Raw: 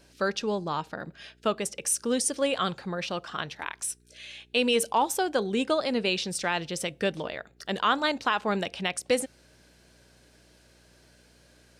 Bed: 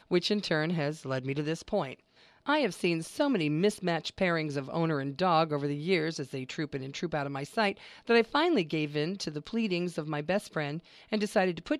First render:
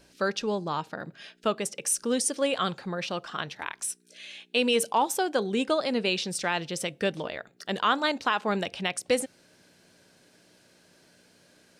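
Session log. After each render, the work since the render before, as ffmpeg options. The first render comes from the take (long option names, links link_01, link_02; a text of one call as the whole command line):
ffmpeg -i in.wav -af "bandreject=frequency=60:width_type=h:width=4,bandreject=frequency=120:width_type=h:width=4" out.wav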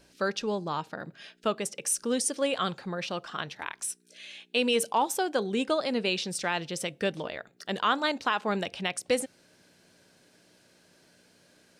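ffmpeg -i in.wav -af "volume=-1.5dB" out.wav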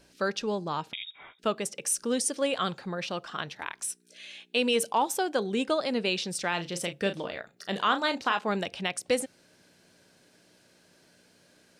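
ffmpeg -i in.wav -filter_complex "[0:a]asettb=1/sr,asplit=3[link_01][link_02][link_03];[link_01]atrim=end=0.934[link_04];[link_02]atrim=start=0.93:end=1.39,asetpts=PTS-STARTPTS,afade=type=in:duration=0.004:curve=qsin,afade=type=out:start_time=0.456:duration=0.004:curve=qsin,lowpass=frequency=3300:width_type=q:width=0.5098,lowpass=frequency=3300:width_type=q:width=0.6013,lowpass=frequency=3300:width_type=q:width=0.9,lowpass=frequency=3300:width_type=q:width=2.563,afreqshift=-3900[link_05];[link_03]atrim=start=1.386[link_06];[link_04][link_05]acrossfade=duration=0.004:curve1=hsin:curve2=qsin[link_07];[link_07][link_06]acrossfade=duration=0.004:curve1=qsin:curve2=hsin,asettb=1/sr,asplit=3[link_08][link_09][link_10];[link_08]atrim=end=6.494[link_11];[link_09]atrim=start=6.49:end=8.39,asetpts=PTS-STARTPTS,afade=type=in:duration=0.004:curve=qsin,afade=type=out:start_time=1.896:duration=0.004:curve=qsin,asplit=2[link_12][link_13];[link_13]adelay=35,volume=-9.5dB[link_14];[link_12][link_14]amix=inputs=2:normalize=0,atrim=end_sample=83790[link_15];[link_10]atrim=start=8.386[link_16];[link_11][link_15]acrossfade=duration=0.004:curve1=hsin:curve2=qsin[link_17];[link_17][link_16]acrossfade=duration=0.004:curve1=qsin:curve2=hsin" out.wav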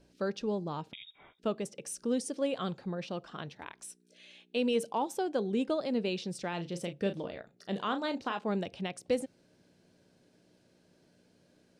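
ffmpeg -i in.wav -af "lowpass=frequency=2100:poles=1,equalizer=frequency=1500:width=0.54:gain=-9" out.wav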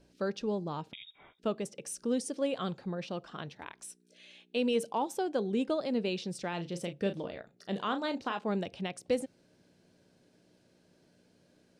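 ffmpeg -i in.wav -af anull out.wav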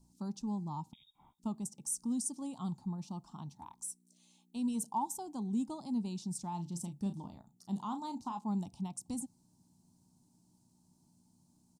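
ffmpeg -i in.wav -af "firequalizer=gain_entry='entry(230,0);entry(500,-28);entry(880,2);entry(1600,-29);entry(4300,-9);entry(7200,5)':delay=0.05:min_phase=1" out.wav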